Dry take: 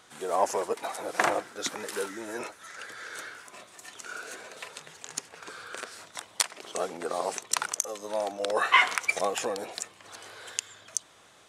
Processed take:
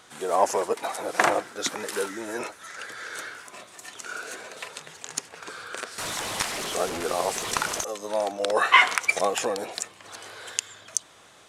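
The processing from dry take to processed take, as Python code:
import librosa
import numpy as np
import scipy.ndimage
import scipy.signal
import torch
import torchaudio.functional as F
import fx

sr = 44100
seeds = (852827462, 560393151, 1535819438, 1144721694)

y = fx.delta_mod(x, sr, bps=64000, step_db=-29.5, at=(5.98, 7.84))
y = y * librosa.db_to_amplitude(4.0)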